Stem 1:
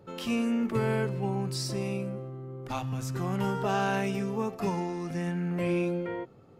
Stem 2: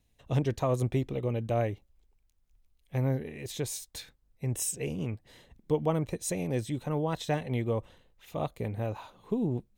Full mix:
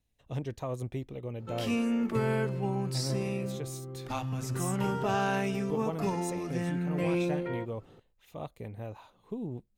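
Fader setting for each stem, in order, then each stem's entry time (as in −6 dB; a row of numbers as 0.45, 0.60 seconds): −1.0, −7.5 decibels; 1.40, 0.00 seconds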